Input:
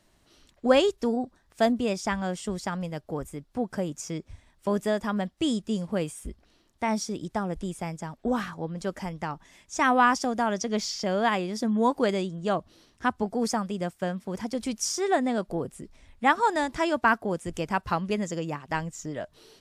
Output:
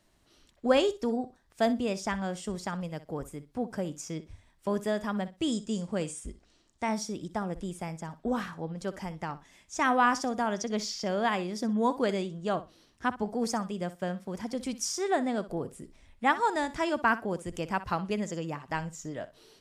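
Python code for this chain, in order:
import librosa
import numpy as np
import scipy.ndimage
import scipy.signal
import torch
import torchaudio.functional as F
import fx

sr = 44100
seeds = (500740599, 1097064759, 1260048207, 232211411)

y = fx.lowpass_res(x, sr, hz=7700.0, q=2.3, at=(5.52, 6.89))
y = fx.room_flutter(y, sr, wall_m=10.6, rt60_s=0.24)
y = y * librosa.db_to_amplitude(-3.5)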